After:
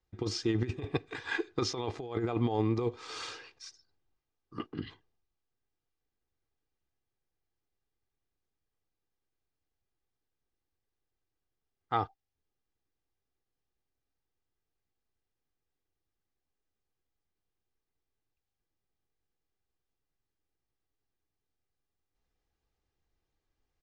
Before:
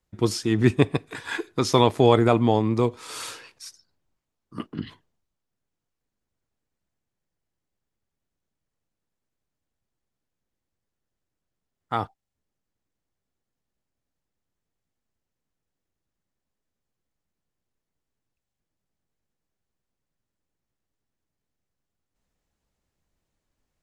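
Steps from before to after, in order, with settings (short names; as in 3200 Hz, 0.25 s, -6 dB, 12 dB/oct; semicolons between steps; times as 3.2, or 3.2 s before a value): LPF 6000 Hz 24 dB/oct; comb 2.5 ms, depth 45%; negative-ratio compressor -21 dBFS, ratio -0.5; gain -8.5 dB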